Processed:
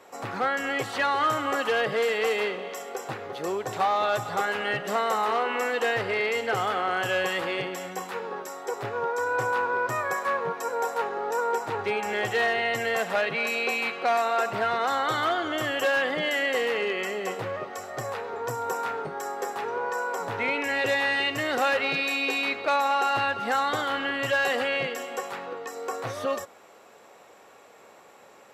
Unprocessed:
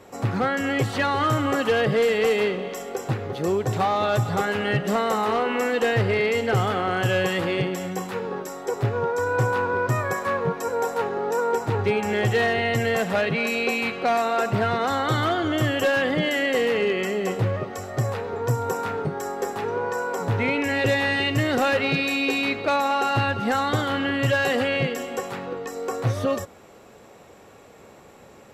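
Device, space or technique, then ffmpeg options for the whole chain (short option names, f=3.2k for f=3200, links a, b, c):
filter by subtraction: -filter_complex "[0:a]asplit=2[a][b];[b]lowpass=920,volume=-1[c];[a][c]amix=inputs=2:normalize=0,volume=-2.5dB"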